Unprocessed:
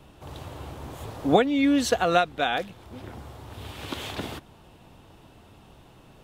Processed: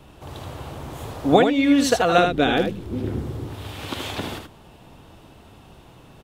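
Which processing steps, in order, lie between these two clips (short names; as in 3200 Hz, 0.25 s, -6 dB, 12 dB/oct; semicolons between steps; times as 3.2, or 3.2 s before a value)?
2.18–3.48 resonant low shelf 520 Hz +9.5 dB, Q 1.5; on a send: echo 78 ms -6 dB; on the sum: gain +3.5 dB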